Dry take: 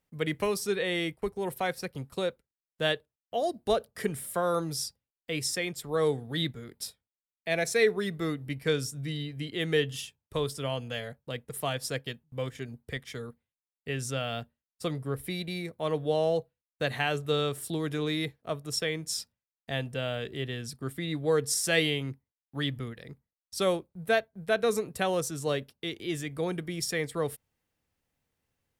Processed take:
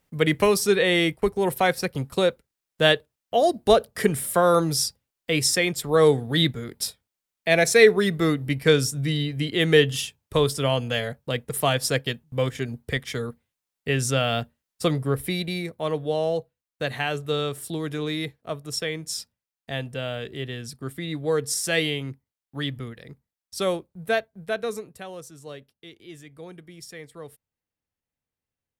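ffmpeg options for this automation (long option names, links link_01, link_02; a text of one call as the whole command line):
ffmpeg -i in.wav -af "volume=9.5dB,afade=type=out:start_time=14.9:duration=1.14:silence=0.421697,afade=type=out:start_time=24.24:duration=0.79:silence=0.251189" out.wav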